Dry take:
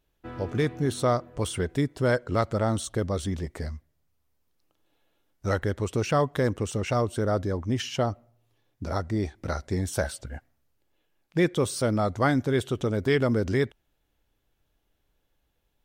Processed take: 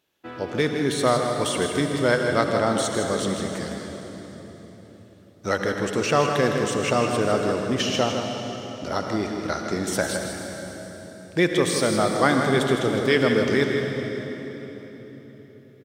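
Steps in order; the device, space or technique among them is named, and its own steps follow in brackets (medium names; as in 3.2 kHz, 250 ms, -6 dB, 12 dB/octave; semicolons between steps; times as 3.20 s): PA in a hall (high-pass 180 Hz 12 dB/octave; peaking EQ 3.6 kHz +5 dB 2.5 oct; delay 159 ms -8 dB; reverberation RT60 4.1 s, pre-delay 66 ms, DRR 4 dB); trim +2.5 dB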